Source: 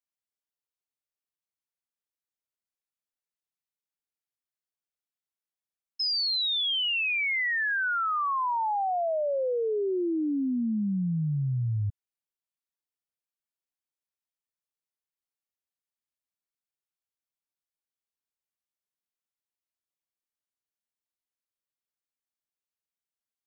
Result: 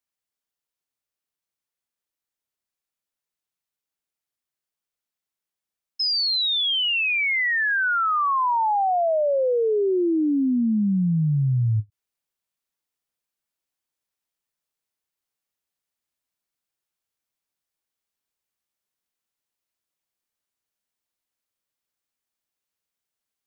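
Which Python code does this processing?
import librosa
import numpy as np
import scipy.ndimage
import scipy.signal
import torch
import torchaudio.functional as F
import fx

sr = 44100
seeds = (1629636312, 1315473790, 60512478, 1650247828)

p1 = fx.rider(x, sr, range_db=10, speed_s=0.5)
p2 = x + (p1 * 10.0 ** (0.0 / 20.0))
y = fx.end_taper(p2, sr, db_per_s=540.0)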